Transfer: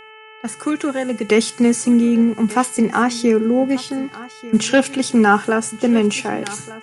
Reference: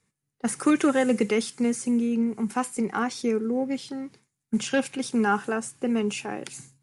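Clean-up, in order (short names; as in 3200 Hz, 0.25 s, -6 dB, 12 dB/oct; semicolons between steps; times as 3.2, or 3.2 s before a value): de-hum 435.9 Hz, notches 7; inverse comb 1.191 s -18 dB; gain correction -10 dB, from 1.29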